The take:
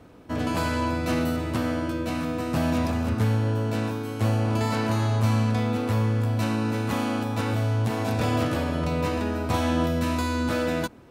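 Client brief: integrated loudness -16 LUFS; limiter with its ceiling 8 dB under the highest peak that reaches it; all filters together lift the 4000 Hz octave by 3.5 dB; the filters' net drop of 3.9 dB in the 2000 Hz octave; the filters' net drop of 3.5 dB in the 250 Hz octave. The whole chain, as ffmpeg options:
-af "equalizer=f=250:t=o:g=-4,equalizer=f=2k:t=o:g=-7,equalizer=f=4k:t=o:g=6.5,volume=13.5dB,alimiter=limit=-6.5dB:level=0:latency=1"

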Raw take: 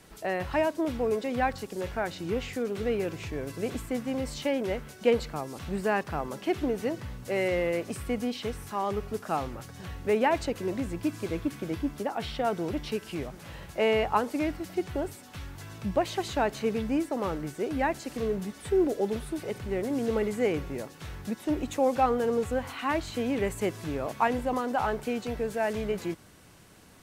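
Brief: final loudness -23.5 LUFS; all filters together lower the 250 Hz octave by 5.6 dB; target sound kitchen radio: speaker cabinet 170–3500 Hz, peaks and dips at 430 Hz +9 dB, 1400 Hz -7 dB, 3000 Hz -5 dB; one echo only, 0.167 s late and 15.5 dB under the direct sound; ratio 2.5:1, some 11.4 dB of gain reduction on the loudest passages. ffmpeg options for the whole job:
-af "equalizer=f=250:t=o:g=-8.5,acompressor=threshold=-38dB:ratio=2.5,highpass=170,equalizer=f=430:t=q:w=4:g=9,equalizer=f=1.4k:t=q:w=4:g=-7,equalizer=f=3k:t=q:w=4:g=-5,lowpass=f=3.5k:w=0.5412,lowpass=f=3.5k:w=1.3066,aecho=1:1:167:0.168,volume=13.5dB"

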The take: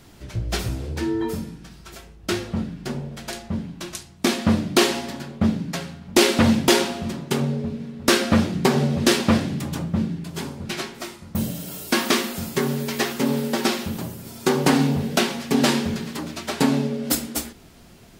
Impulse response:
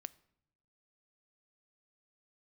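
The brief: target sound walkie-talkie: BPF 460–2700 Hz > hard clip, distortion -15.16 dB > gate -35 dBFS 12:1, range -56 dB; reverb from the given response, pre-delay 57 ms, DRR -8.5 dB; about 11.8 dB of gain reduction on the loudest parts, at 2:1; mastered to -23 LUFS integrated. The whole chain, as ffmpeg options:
-filter_complex "[0:a]acompressor=threshold=-35dB:ratio=2,asplit=2[a][b];[1:a]atrim=start_sample=2205,adelay=57[c];[b][c]afir=irnorm=-1:irlink=0,volume=13dB[d];[a][d]amix=inputs=2:normalize=0,highpass=460,lowpass=2.7k,asoftclip=type=hard:threshold=-20dB,agate=range=-56dB:threshold=-35dB:ratio=12,volume=8dB"

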